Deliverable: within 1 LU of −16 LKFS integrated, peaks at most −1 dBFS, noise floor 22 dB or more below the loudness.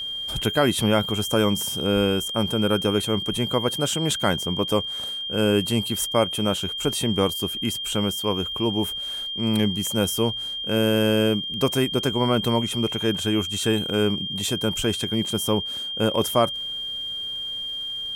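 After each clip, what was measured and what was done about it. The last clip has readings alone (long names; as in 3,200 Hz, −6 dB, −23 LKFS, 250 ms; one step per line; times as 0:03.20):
crackle rate 24 per second; interfering tone 3,200 Hz; level of the tone −28 dBFS; integrated loudness −23.0 LKFS; sample peak −7.0 dBFS; target loudness −16.0 LKFS
→ click removal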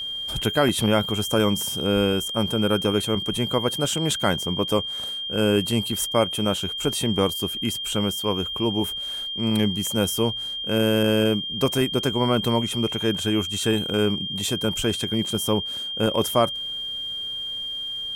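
crackle rate 0.39 per second; interfering tone 3,200 Hz; level of the tone −28 dBFS
→ notch filter 3,200 Hz, Q 30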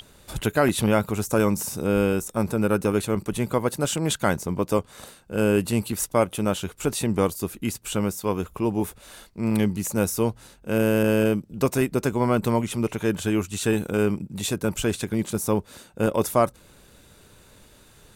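interfering tone none found; integrated loudness −24.5 LKFS; sample peak −7.0 dBFS; target loudness −16.0 LKFS
→ level +8.5 dB
brickwall limiter −1 dBFS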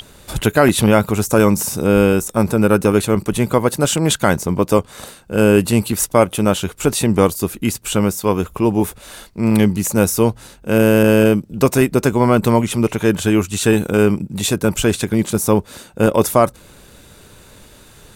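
integrated loudness −16.0 LKFS; sample peak −1.0 dBFS; background noise floor −45 dBFS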